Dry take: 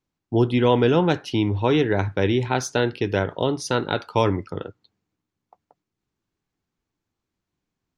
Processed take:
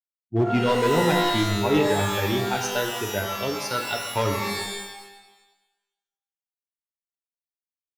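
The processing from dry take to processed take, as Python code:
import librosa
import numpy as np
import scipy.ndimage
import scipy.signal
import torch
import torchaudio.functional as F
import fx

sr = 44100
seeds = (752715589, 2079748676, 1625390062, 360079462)

y = fx.bin_expand(x, sr, power=2.0)
y = np.clip(y, -10.0 ** (-16.5 / 20.0), 10.0 ** (-16.5 / 20.0))
y = fx.rev_shimmer(y, sr, seeds[0], rt60_s=1.0, semitones=12, shimmer_db=-2, drr_db=3.5)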